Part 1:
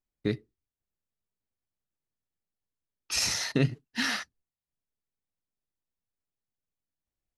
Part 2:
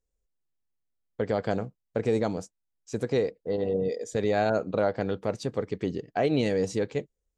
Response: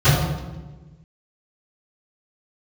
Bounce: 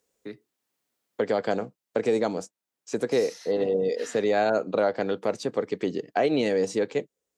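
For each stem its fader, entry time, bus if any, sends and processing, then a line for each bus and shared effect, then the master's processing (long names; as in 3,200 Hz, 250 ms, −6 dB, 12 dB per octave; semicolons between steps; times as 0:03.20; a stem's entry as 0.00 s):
−17.0 dB, 0.00 s, no send, multiband upward and downward expander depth 40%
+3.0 dB, 0.00 s, no send, no processing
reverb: not used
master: high-pass filter 240 Hz 12 dB per octave; multiband upward and downward compressor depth 40%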